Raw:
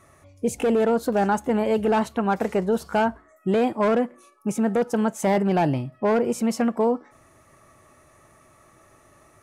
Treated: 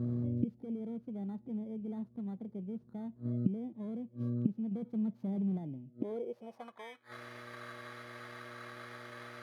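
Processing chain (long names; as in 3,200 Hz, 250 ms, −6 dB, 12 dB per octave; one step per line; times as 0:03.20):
samples in bit-reversed order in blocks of 16 samples
0:04.71–0:05.58: leveller curve on the samples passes 2
hum with harmonics 120 Hz, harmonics 5, −44 dBFS −7 dB per octave
gate with flip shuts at −29 dBFS, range −30 dB
band-pass filter sweep 200 Hz → 1,800 Hz, 0:05.86–0:06.94
level +17 dB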